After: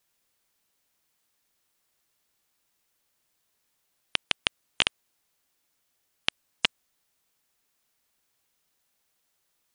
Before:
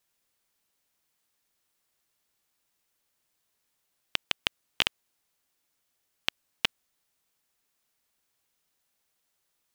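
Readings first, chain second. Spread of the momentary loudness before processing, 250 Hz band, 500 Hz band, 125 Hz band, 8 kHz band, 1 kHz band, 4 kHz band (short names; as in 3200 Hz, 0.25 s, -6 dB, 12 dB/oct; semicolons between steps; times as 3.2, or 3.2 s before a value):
5 LU, +2.5 dB, +2.5 dB, +2.5 dB, +2.0 dB, +2.5 dB, +2.5 dB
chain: spectral gate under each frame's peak -30 dB strong; gain +2.5 dB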